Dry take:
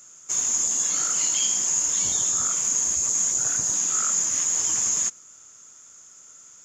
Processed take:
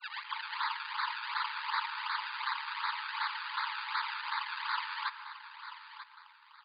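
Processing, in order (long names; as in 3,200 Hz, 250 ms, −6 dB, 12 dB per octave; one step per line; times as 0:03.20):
turntable start at the beginning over 0.66 s
sample-and-hold swept by an LFO 30×, swing 100% 2.7 Hz
soft clipping −21 dBFS, distortion −14 dB
linear-phase brick-wall band-pass 840–4,900 Hz
single-tap delay 940 ms −12 dB
on a send at −12 dB: convolution reverb RT60 2.1 s, pre-delay 88 ms
on the sum: level −4.5 dB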